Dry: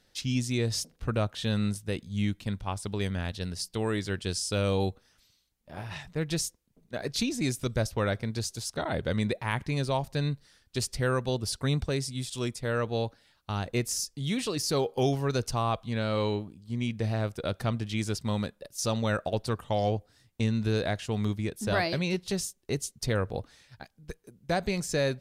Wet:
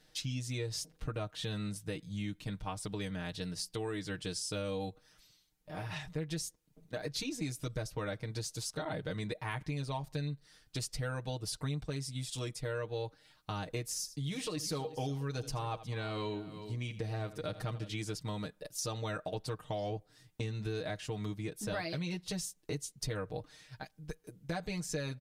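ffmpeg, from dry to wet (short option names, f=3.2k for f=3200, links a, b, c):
-filter_complex "[0:a]asettb=1/sr,asplit=3[a][b][c];[a]atrim=end=13.954[d];[b]atrim=start=13.95:end=17.96,asetpts=PTS-STARTPTS,afade=t=in:d=0.004:c=qsin,afade=t=out:st=4.006:d=0.004:c=qsin,aecho=1:1:80|361:0.15|0.126,atrim=end_sample=176841[e];[c]atrim=start=17.956[f];[d][e]acrossfade=d=0.004:c1=hsin:c2=qsin[g];[g][f]acrossfade=d=0.004:c1=qsin:c2=hsin,aecho=1:1:6.5:0.88,acompressor=threshold=-36dB:ratio=3,volume=-1.5dB"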